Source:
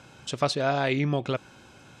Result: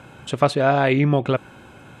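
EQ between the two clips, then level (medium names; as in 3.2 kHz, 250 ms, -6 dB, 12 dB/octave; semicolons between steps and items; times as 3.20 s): peaking EQ 5.4 kHz -14 dB 1.1 oct; +8.0 dB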